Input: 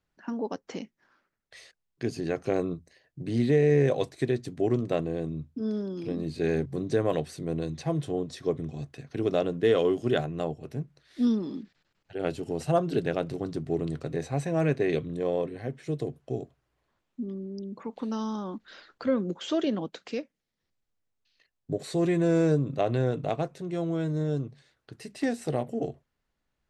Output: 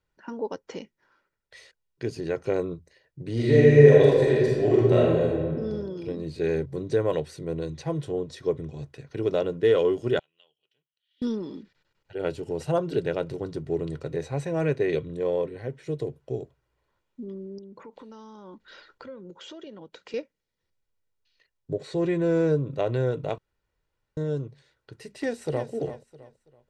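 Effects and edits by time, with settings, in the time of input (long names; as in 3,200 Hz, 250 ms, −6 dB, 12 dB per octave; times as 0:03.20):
0:03.33–0:05.56: thrown reverb, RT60 1.7 s, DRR −6 dB
0:10.19–0:11.22: resonant band-pass 3,100 Hz, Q 16
0:17.58–0:20.14: downward compressor 4 to 1, threshold −41 dBFS
0:21.73–0:22.71: high-frequency loss of the air 67 metres
0:23.38–0:24.17: fill with room tone
0:25.18–0:25.70: delay throw 330 ms, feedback 30%, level −10.5 dB
whole clip: high-shelf EQ 6,800 Hz −5.5 dB; comb filter 2.1 ms, depth 43%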